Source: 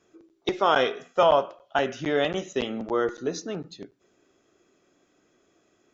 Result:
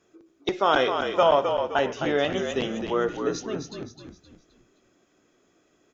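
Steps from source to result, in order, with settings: frequency-shifting echo 260 ms, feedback 38%, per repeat -45 Hz, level -6.5 dB

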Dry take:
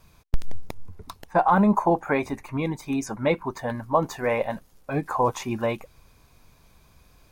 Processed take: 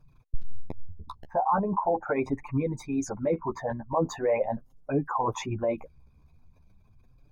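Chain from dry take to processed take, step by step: resonances exaggerated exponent 2; in parallel at -1 dB: compressor with a negative ratio -23 dBFS, ratio -0.5; on the sum: flange 0.41 Hz, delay 6.6 ms, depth 7.9 ms, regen +6%; trim -5 dB

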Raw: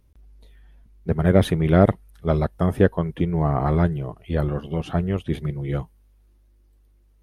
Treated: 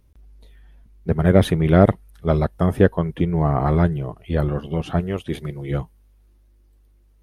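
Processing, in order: 5.00–5.71 s: tone controls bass -6 dB, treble +4 dB; trim +2 dB

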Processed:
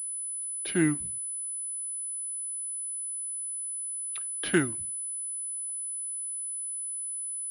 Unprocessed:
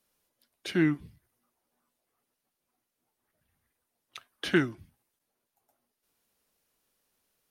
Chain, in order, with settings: class-D stage that switches slowly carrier 10 kHz

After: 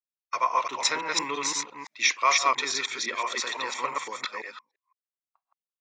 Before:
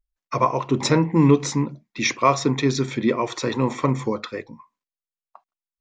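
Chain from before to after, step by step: chunks repeated in reverse 170 ms, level -1 dB; gate -34 dBFS, range -19 dB; high-pass 1.2 kHz 12 dB/octave

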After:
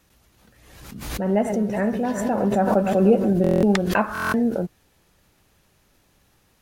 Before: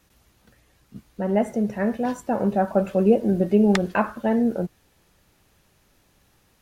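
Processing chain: 1.07–3.33 s: backward echo that repeats 186 ms, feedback 69%, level -11.5 dB; buffer glitch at 3.42/4.13 s, samples 1024, times 8; swell ahead of each attack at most 48 dB/s

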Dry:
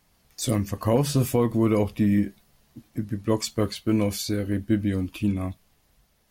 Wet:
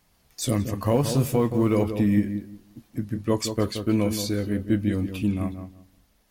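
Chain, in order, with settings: 0.85–1.84 s: companding laws mixed up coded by A; on a send: filtered feedback delay 175 ms, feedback 22%, low-pass 1.3 kHz, level -8 dB

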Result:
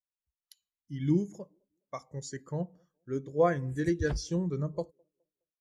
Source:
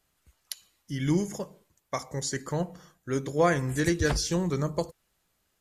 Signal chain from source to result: feedback echo behind a band-pass 208 ms, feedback 45%, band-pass 420 Hz, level -23 dB; dynamic bell 3.2 kHz, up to +3 dB, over -49 dBFS, Q 2.5; level rider gain up to 7 dB; spectral contrast expander 1.5:1; trim -9 dB

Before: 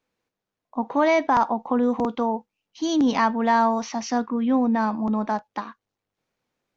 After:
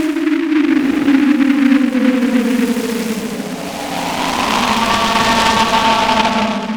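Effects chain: Paulstretch 20×, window 0.05 s, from 2.96 s; delay time shaken by noise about 1.7 kHz, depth 0.11 ms; trim +5.5 dB

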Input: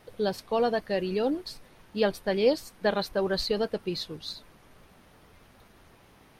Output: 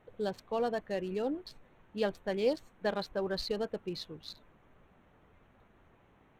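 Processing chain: local Wiener filter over 9 samples; trim -6.5 dB

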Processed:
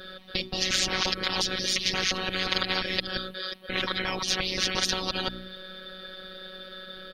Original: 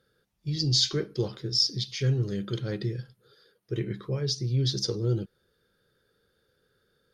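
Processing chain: time reversed locally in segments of 176 ms; resonant high shelf 5.1 kHz -12 dB, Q 3; hum notches 60/120/180/240/300 Hz; comb 3.7 ms, depth 94%; robot voice 187 Hz; spectrum-flattening compressor 10:1

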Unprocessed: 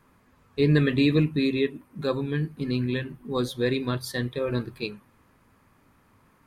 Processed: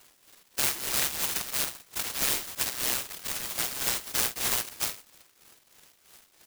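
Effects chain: every band turned upside down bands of 2 kHz; elliptic high-pass 300 Hz; comb 2.2 ms, depth 64%; peak limiter -16 dBFS, peak gain reduction 7.5 dB; compression, threshold -27 dBFS, peak gain reduction 7 dB; tremolo 3.1 Hz, depth 70%; early reflections 33 ms -16 dB, 50 ms -9 dB; delay time shaken by noise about 2.8 kHz, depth 0.43 ms; trim +3.5 dB

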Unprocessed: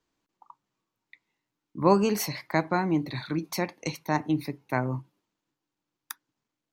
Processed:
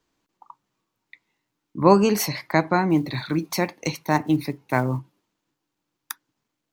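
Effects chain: 2.90–4.99 s: block-companded coder 7-bit; trim +5.5 dB

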